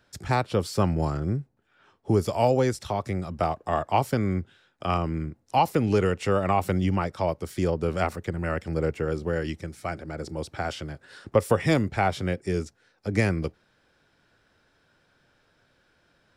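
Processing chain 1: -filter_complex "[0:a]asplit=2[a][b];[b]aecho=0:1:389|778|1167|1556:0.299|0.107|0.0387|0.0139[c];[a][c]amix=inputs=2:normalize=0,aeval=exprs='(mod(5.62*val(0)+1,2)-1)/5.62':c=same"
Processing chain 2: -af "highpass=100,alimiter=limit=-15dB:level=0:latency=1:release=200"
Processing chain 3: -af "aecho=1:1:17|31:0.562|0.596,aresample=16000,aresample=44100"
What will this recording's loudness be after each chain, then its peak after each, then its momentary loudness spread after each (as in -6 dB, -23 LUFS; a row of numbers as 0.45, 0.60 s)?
-26.5, -29.5, -25.0 LUFS; -15.0, -15.0, -6.0 dBFS; 12, 8, 12 LU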